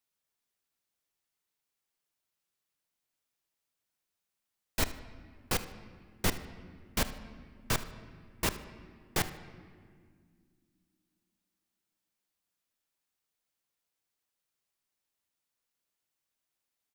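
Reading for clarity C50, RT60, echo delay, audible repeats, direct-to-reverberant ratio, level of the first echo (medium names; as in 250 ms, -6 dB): 12.0 dB, 2.0 s, 76 ms, 1, 10.0 dB, -18.0 dB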